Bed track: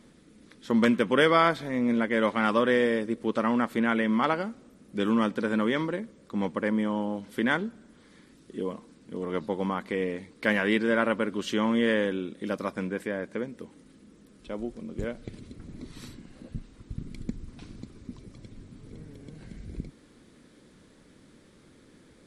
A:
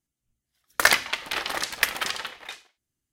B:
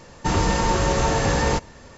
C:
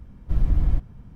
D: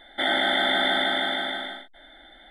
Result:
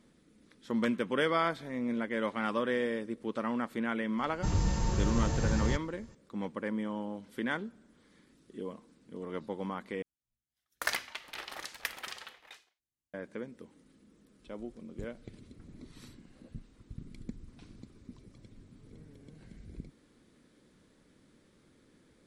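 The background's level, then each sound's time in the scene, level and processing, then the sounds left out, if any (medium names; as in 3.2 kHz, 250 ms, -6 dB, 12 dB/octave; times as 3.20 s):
bed track -8 dB
4.18 s: add B -18 dB + tone controls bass +13 dB, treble +6 dB
10.02 s: replace with A -14 dB
not used: C, D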